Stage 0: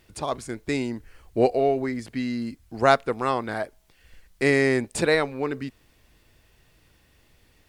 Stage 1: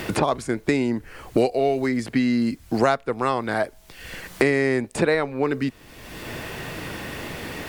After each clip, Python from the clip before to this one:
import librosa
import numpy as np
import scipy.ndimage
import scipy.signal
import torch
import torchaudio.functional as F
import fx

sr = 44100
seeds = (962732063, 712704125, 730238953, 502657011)

y = fx.band_squash(x, sr, depth_pct=100)
y = F.gain(torch.from_numpy(y), 1.5).numpy()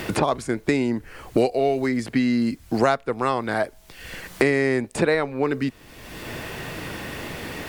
y = x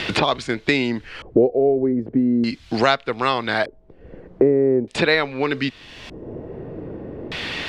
y = fx.spec_repair(x, sr, seeds[0], start_s=5.88, length_s=0.66, low_hz=1100.0, high_hz=5100.0, source='both')
y = fx.high_shelf(y, sr, hz=2100.0, db=10.5)
y = fx.filter_lfo_lowpass(y, sr, shape='square', hz=0.41, low_hz=440.0, high_hz=3600.0, q=1.8)